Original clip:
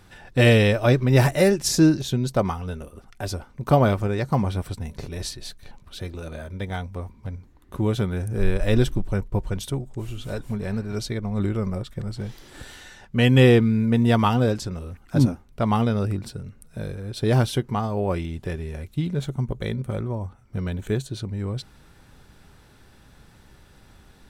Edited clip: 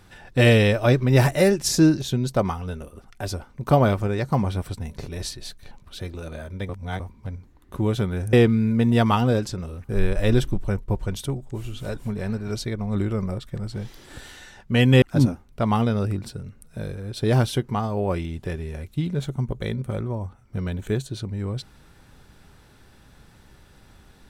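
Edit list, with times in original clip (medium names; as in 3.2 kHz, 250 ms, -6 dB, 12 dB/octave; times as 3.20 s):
6.69–7.00 s: reverse
13.46–15.02 s: move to 8.33 s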